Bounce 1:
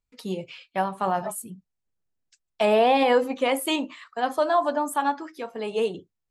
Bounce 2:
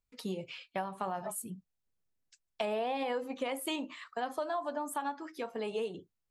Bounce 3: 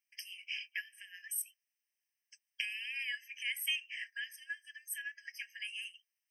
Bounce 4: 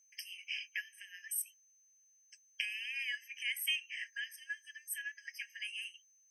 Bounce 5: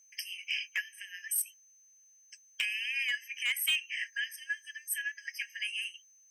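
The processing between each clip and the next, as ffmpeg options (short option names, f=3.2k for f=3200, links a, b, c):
-af "acompressor=threshold=-31dB:ratio=4,volume=-2.5dB"
-af "afftfilt=real='re*eq(mod(floor(b*sr/1024/1600),2),1)':imag='im*eq(mod(floor(b*sr/1024/1600),2),1)':win_size=1024:overlap=0.75,volume=7dB"
-af "aeval=exprs='val(0)+0.000501*sin(2*PI*6200*n/s)':c=same"
-af "asoftclip=type=hard:threshold=-30dB,volume=6.5dB"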